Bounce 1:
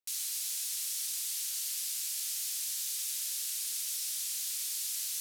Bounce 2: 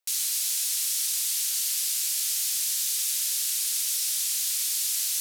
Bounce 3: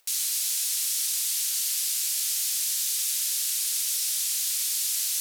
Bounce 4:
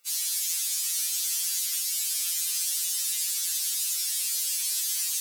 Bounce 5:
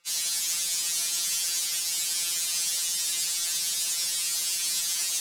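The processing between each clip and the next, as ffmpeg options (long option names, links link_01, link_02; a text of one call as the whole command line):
ffmpeg -i in.wav -af "highpass=frequency=480:width=0.5412,highpass=frequency=480:width=1.3066,volume=8.5dB" out.wav
ffmpeg -i in.wav -af "acompressor=mode=upward:threshold=-51dB:ratio=2.5" out.wav
ffmpeg -i in.wav -af "afftfilt=real='re*2.83*eq(mod(b,8),0)':imag='im*2.83*eq(mod(b,8),0)':win_size=2048:overlap=0.75,volume=1dB" out.wav
ffmpeg -i in.wav -af "adynamicsmooth=sensitivity=5:basefreq=6400,volume=4.5dB" out.wav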